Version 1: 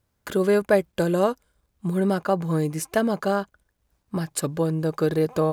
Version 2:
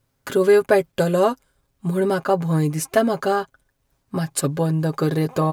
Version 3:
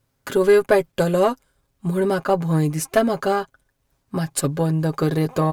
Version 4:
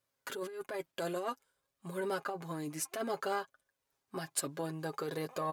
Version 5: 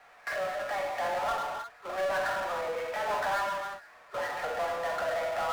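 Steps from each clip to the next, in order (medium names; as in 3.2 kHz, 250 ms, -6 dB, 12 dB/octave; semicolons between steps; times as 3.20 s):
comb 7.4 ms, depth 63%; trim +2.5 dB
Chebyshev shaper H 4 -25 dB, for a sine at -4.5 dBFS
flange 0.56 Hz, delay 1.6 ms, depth 1.6 ms, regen +62%; compressor with a negative ratio -24 dBFS, ratio -1; high-pass 570 Hz 6 dB/octave; trim -7.5 dB
mistuned SSB +190 Hz 320–2200 Hz; gated-style reverb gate 370 ms falling, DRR -1.5 dB; power-law waveshaper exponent 0.5; trim -1.5 dB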